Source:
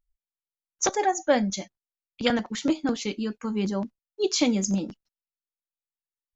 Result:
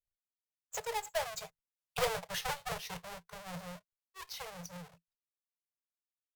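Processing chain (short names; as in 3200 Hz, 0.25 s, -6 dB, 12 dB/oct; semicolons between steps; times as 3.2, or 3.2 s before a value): half-waves squared off; Doppler pass-by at 2.05, 36 m/s, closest 3.3 m; compressor 6:1, threshold -32 dBFS, peak gain reduction 17 dB; tube stage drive 30 dB, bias 0.4; Chebyshev band-stop 170–440 Hz, order 4; gain +8 dB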